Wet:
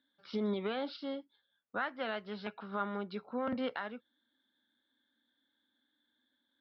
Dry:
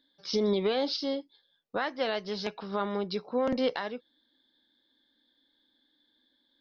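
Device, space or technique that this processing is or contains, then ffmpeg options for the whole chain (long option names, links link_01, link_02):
guitar cabinet: -af "highpass=86,equalizer=frequency=100:width_type=q:width=4:gain=7,equalizer=frequency=160:width_type=q:width=4:gain=-9,equalizer=frequency=220:width_type=q:width=4:gain=5,equalizer=frequency=340:width_type=q:width=4:gain=-4,equalizer=frequency=480:width_type=q:width=4:gain=-4,equalizer=frequency=1400:width_type=q:width=4:gain=9,lowpass=frequency=3400:width=0.5412,lowpass=frequency=3400:width=1.3066,volume=-6.5dB"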